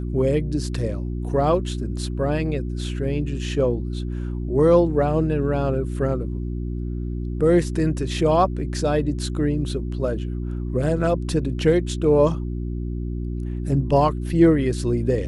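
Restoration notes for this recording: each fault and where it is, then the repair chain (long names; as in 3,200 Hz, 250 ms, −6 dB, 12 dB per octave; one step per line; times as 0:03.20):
mains hum 60 Hz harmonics 6 −27 dBFS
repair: hum removal 60 Hz, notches 6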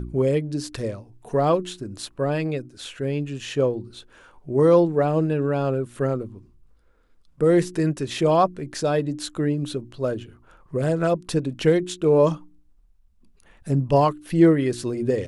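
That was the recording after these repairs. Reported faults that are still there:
none of them is left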